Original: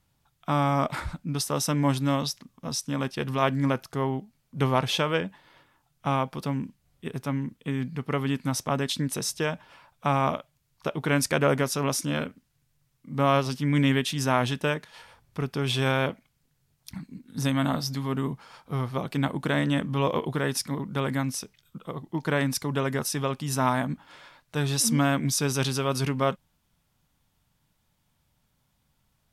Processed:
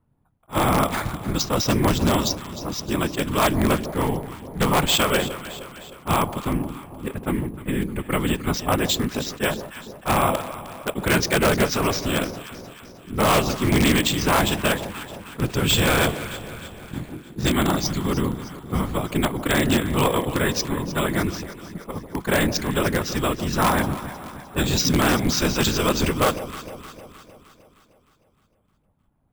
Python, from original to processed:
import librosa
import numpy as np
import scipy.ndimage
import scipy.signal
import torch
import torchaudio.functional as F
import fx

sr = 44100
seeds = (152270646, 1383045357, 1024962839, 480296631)

p1 = fx.zero_step(x, sr, step_db=-39.0, at=(15.39, 17.16))
p2 = fx.whisperise(p1, sr, seeds[0])
p3 = scipy.signal.sosfilt(scipy.signal.butter(4, 4800.0, 'lowpass', fs=sr, output='sos'), p2)
p4 = fx.high_shelf(p3, sr, hz=3200.0, db=9.5)
p5 = fx.env_lowpass(p4, sr, base_hz=820.0, full_db=-21.5)
p6 = (np.mod(10.0 ** (14.5 / 20.0) * p5 + 1.0, 2.0) - 1.0) / 10.0 ** (14.5 / 20.0)
p7 = p5 + (p6 * 10.0 ** (-3.5 / 20.0))
p8 = fx.echo_alternate(p7, sr, ms=154, hz=920.0, feedback_pct=73, wet_db=-11)
p9 = np.repeat(p8[::4], 4)[:len(p8)]
y = fx.attack_slew(p9, sr, db_per_s=390.0)